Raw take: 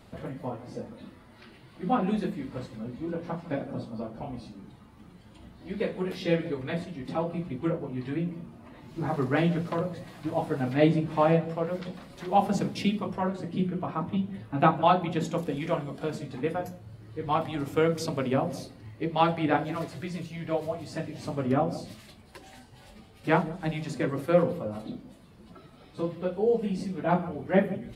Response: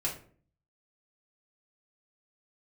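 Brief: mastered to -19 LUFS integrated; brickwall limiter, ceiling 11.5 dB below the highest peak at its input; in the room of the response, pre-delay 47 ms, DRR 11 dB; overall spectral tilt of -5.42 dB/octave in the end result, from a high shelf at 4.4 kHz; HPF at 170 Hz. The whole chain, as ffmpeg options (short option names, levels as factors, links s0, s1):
-filter_complex "[0:a]highpass=170,highshelf=f=4400:g=6.5,alimiter=limit=0.106:level=0:latency=1,asplit=2[s0][s1];[1:a]atrim=start_sample=2205,adelay=47[s2];[s1][s2]afir=irnorm=-1:irlink=0,volume=0.168[s3];[s0][s3]amix=inputs=2:normalize=0,volume=4.73"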